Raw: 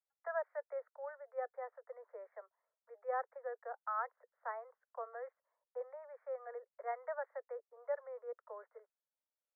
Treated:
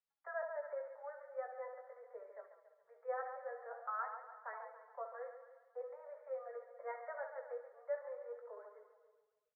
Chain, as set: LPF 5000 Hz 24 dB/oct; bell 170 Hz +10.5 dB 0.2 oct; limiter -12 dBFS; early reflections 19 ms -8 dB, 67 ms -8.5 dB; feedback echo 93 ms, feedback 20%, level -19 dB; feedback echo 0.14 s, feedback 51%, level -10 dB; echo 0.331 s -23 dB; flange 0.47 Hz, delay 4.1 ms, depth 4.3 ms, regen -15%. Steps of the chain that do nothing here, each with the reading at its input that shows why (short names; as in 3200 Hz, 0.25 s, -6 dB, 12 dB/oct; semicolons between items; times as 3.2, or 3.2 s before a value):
LPF 5000 Hz: input band ends at 2000 Hz; bell 170 Hz: input band starts at 400 Hz; limiter -12 dBFS: input peak -26.5 dBFS